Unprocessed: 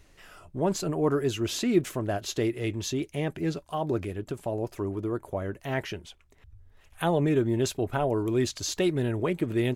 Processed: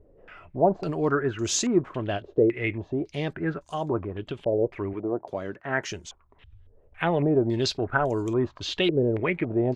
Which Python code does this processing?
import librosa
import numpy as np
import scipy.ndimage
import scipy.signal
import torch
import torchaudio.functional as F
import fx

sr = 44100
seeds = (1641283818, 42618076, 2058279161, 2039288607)

y = fx.highpass(x, sr, hz=150.0, slope=12, at=(4.93, 5.88))
y = fx.filter_held_lowpass(y, sr, hz=3.6, low_hz=500.0, high_hz=6700.0)